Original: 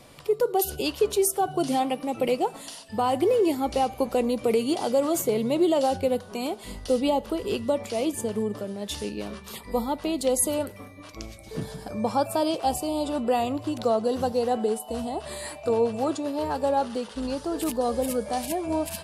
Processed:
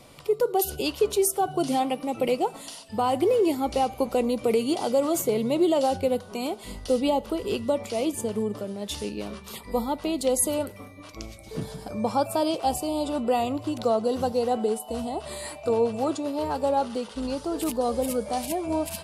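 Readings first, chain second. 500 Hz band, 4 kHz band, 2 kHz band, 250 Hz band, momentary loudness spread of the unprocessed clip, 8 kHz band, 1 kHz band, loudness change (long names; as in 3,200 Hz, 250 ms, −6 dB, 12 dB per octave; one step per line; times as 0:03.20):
0.0 dB, 0.0 dB, −0.5 dB, 0.0 dB, 10 LU, 0.0 dB, 0.0 dB, 0.0 dB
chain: notch filter 1,700 Hz, Q 10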